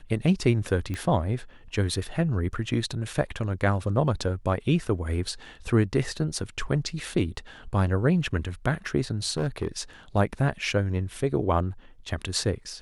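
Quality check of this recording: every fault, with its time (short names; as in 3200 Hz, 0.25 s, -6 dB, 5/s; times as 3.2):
0.94 pop -19 dBFS
9.3–9.68 clipped -21.5 dBFS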